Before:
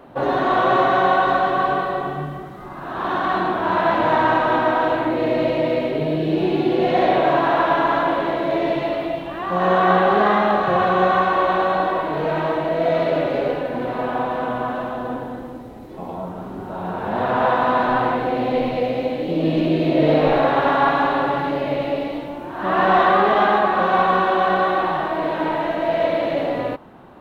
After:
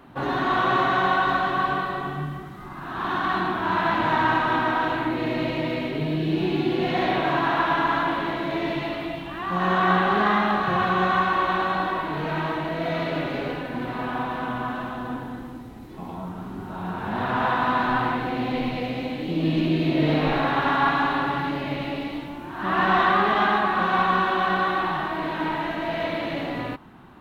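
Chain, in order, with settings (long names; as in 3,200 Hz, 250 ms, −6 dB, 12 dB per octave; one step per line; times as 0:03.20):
parametric band 550 Hz −12.5 dB 1 octave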